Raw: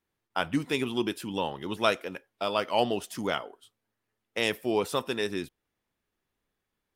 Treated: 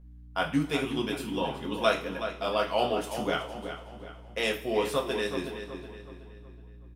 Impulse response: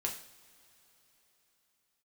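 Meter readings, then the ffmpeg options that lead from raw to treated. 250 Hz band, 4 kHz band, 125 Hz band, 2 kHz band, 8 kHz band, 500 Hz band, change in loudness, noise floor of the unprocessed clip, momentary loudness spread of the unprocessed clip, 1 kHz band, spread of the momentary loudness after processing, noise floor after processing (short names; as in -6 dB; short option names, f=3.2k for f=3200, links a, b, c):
0.0 dB, -0.5 dB, +1.5 dB, 0.0 dB, -1.0 dB, +1.0 dB, -0.5 dB, -84 dBFS, 9 LU, 0.0 dB, 18 LU, -48 dBFS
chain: -filter_complex "[0:a]asplit=2[a][b];[b]adelay=372,lowpass=f=4.1k:p=1,volume=-9dB,asplit=2[c][d];[d]adelay=372,lowpass=f=4.1k:p=1,volume=0.44,asplit=2[e][f];[f]adelay=372,lowpass=f=4.1k:p=1,volume=0.44,asplit=2[g][h];[h]adelay=372,lowpass=f=4.1k:p=1,volume=0.44,asplit=2[i][j];[j]adelay=372,lowpass=f=4.1k:p=1,volume=0.44[k];[a][c][e][g][i][k]amix=inputs=6:normalize=0,aeval=exprs='val(0)+0.00398*(sin(2*PI*60*n/s)+sin(2*PI*2*60*n/s)/2+sin(2*PI*3*60*n/s)/3+sin(2*PI*4*60*n/s)/4+sin(2*PI*5*60*n/s)/5)':c=same[l];[1:a]atrim=start_sample=2205,asetrate=66150,aresample=44100[m];[l][m]afir=irnorm=-1:irlink=0,volume=1dB"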